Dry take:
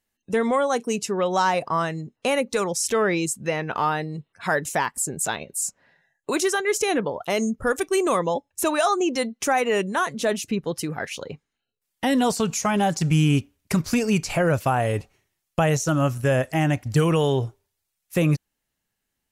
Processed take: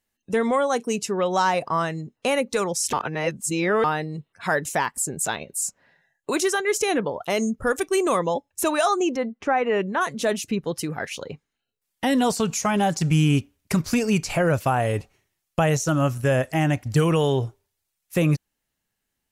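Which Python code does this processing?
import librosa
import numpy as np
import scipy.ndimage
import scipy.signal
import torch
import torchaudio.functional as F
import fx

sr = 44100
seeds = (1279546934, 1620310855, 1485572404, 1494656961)

y = fx.lowpass(x, sr, hz=fx.line((9.15, 1600.0), (10.0, 2800.0)), slope=12, at=(9.15, 10.0), fade=0.02)
y = fx.edit(y, sr, fx.reverse_span(start_s=2.93, length_s=0.91), tone=tone)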